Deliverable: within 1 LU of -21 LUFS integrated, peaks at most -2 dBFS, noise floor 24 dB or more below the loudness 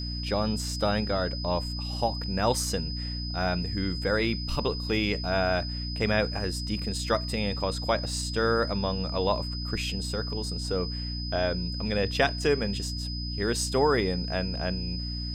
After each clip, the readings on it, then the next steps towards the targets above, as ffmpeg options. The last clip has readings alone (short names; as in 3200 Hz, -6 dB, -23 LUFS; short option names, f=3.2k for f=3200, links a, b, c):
hum 60 Hz; harmonics up to 300 Hz; hum level -32 dBFS; steady tone 5000 Hz; tone level -36 dBFS; loudness -28.5 LUFS; peak -9.0 dBFS; loudness target -21.0 LUFS
-> -af "bandreject=f=60:t=h:w=4,bandreject=f=120:t=h:w=4,bandreject=f=180:t=h:w=4,bandreject=f=240:t=h:w=4,bandreject=f=300:t=h:w=4"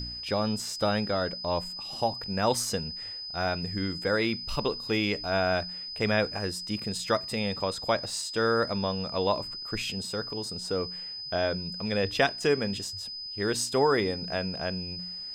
hum none; steady tone 5000 Hz; tone level -36 dBFS
-> -af "bandreject=f=5k:w=30"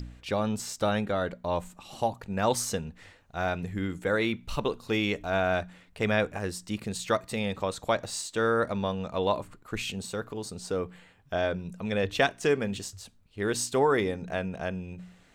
steady tone none; loudness -30.0 LUFS; peak -10.0 dBFS; loudness target -21.0 LUFS
-> -af "volume=9dB,alimiter=limit=-2dB:level=0:latency=1"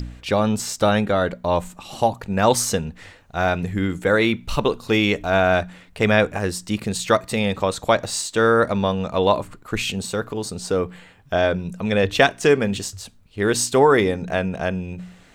loudness -21.0 LUFS; peak -2.0 dBFS; noise floor -49 dBFS